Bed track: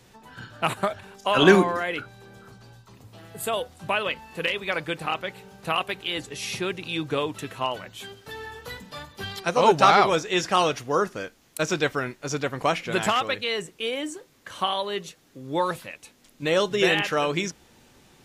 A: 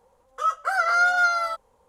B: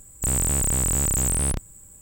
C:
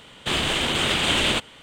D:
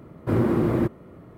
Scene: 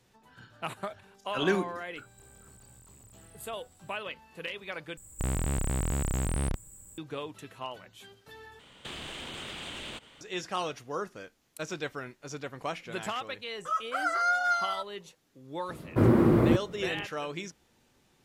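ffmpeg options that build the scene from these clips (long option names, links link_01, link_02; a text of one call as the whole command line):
ffmpeg -i bed.wav -i cue0.wav -i cue1.wav -i cue2.wav -i cue3.wav -filter_complex "[2:a]asplit=2[link_01][link_02];[0:a]volume=-11.5dB[link_03];[link_01]acompressor=threshold=-39dB:ratio=6:attack=3.2:release=140:knee=1:detection=peak[link_04];[link_02]acrossover=split=4000[link_05][link_06];[link_06]acompressor=threshold=-37dB:ratio=4:attack=1:release=60[link_07];[link_05][link_07]amix=inputs=2:normalize=0[link_08];[3:a]acompressor=threshold=-29dB:ratio=6:attack=3.2:release=140:knee=1:detection=peak[link_09];[link_03]asplit=3[link_10][link_11][link_12];[link_10]atrim=end=4.974[link_13];[link_08]atrim=end=2.01,asetpts=PTS-STARTPTS,volume=-4dB[link_14];[link_11]atrim=start=6.976:end=8.594[link_15];[link_09]atrim=end=1.62,asetpts=PTS-STARTPTS,volume=-8.5dB[link_16];[link_12]atrim=start=10.206[link_17];[link_04]atrim=end=2.01,asetpts=PTS-STARTPTS,volume=-17dB,afade=type=in:duration=0.004:curve=hsin,afade=type=out:start_time=2.006:duration=0.004:curve=hsin,adelay=1960[link_18];[1:a]atrim=end=1.88,asetpts=PTS-STARTPTS,volume=-7dB,afade=type=in:duration=0.004:curve=hsin,afade=type=out:start_time=1.876:duration=0.004:curve=hsin,adelay=13270[link_19];[4:a]atrim=end=1.37,asetpts=PTS-STARTPTS,afade=type=in:duration=0.004:curve=hsin,afade=type=out:start_time=1.366:duration=0.004:curve=hsin,adelay=15690[link_20];[link_13][link_14]acrossfade=duration=0.004:curve1=hsin:curve2=hsin[link_21];[link_21][link_15]acrossfade=duration=0.004:curve1=hsin:curve2=hsin[link_22];[link_22][link_16]acrossfade=duration=0.004:curve1=hsin:curve2=hsin[link_23];[link_23][link_17]acrossfade=duration=0.004:curve1=hsin:curve2=hsin[link_24];[link_24][link_18][link_19][link_20]amix=inputs=4:normalize=0" out.wav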